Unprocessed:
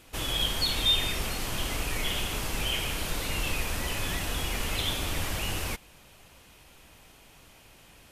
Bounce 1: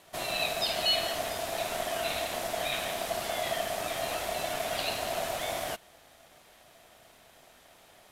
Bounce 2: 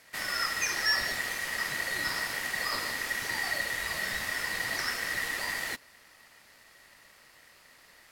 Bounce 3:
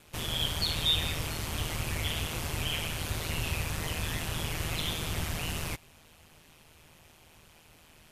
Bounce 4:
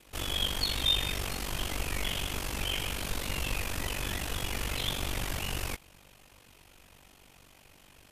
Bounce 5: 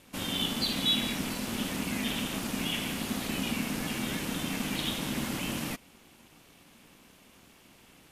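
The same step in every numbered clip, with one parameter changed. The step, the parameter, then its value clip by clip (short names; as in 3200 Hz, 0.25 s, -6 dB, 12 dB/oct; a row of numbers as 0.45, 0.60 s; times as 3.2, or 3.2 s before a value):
ring modulator, frequency: 670, 1900, 79, 24, 230 Hz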